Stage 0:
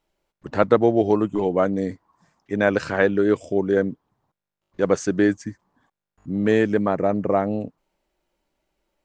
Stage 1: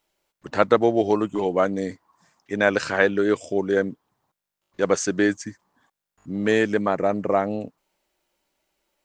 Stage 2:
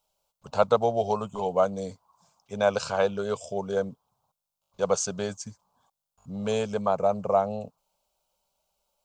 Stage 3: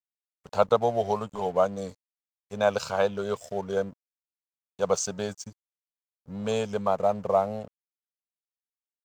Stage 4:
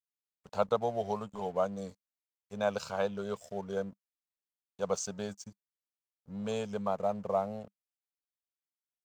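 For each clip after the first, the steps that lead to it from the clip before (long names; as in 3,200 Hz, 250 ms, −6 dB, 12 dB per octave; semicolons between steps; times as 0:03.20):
spectral tilt +2 dB per octave; level +1 dB
phaser with its sweep stopped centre 770 Hz, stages 4
dead-zone distortion −48.5 dBFS; tape wow and flutter 28 cents
parametric band 200 Hz +4.5 dB 0.24 octaves; level −7.5 dB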